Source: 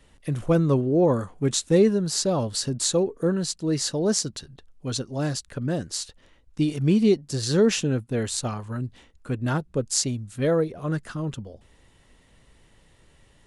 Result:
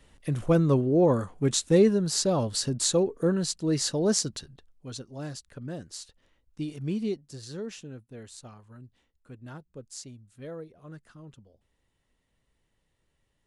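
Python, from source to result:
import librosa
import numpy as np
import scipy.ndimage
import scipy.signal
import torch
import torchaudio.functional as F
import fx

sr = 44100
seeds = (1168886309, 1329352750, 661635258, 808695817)

y = fx.gain(x, sr, db=fx.line((4.37, -1.5), (4.87, -10.5), (7.02, -10.5), (7.66, -18.0)))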